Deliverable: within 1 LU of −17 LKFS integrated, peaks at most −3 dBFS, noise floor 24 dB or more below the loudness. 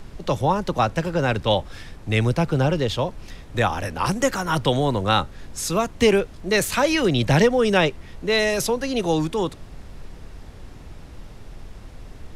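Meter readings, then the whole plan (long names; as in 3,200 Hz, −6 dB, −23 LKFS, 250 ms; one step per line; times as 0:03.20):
background noise floor −42 dBFS; target noise floor −46 dBFS; integrated loudness −22.0 LKFS; sample peak −6.0 dBFS; target loudness −17.0 LKFS
→ noise reduction from a noise print 6 dB
level +5 dB
brickwall limiter −3 dBFS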